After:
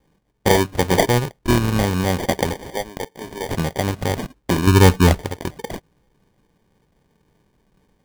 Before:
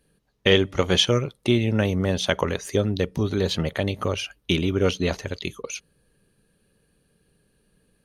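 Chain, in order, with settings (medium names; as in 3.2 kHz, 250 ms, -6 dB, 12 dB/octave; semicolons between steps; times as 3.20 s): 1.38–1.84 s: sorted samples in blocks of 32 samples; 2.53–3.53 s: high-pass 660 Hz 12 dB/octave; 4.67–5.22 s: tilt EQ -3.5 dB/octave; sample-and-hold 33×; trim +3 dB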